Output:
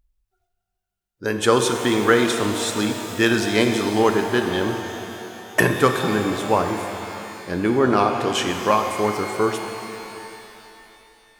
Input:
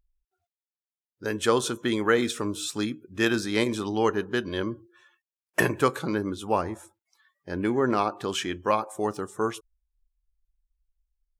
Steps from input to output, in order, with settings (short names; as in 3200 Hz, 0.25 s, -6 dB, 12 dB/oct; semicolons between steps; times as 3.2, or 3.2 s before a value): shimmer reverb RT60 3.1 s, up +12 st, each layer -8 dB, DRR 5 dB; gain +5.5 dB